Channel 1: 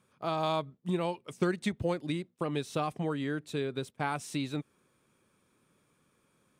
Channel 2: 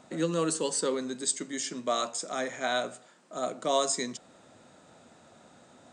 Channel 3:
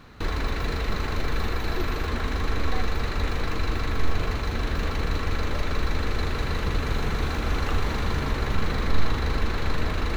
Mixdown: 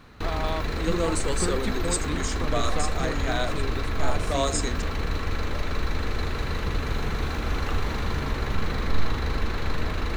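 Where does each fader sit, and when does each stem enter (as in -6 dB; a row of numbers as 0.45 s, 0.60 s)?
-1.0 dB, 0.0 dB, -1.5 dB; 0.00 s, 0.65 s, 0.00 s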